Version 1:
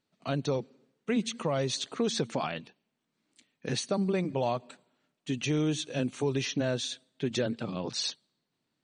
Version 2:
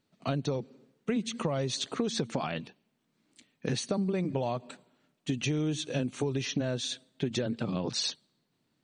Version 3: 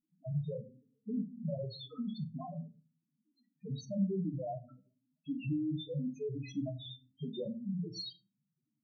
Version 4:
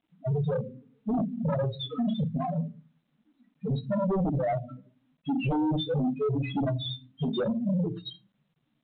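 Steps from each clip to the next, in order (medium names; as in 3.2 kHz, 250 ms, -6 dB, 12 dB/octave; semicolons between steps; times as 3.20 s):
bass shelf 350 Hz +5 dB; compression, threshold -30 dBFS, peak gain reduction 9.5 dB; trim +3 dB
loudest bins only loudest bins 1; simulated room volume 120 m³, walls furnished, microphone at 0.69 m; trim +1 dB
sine folder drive 10 dB, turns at -23.5 dBFS; G.726 40 kbps 8 kHz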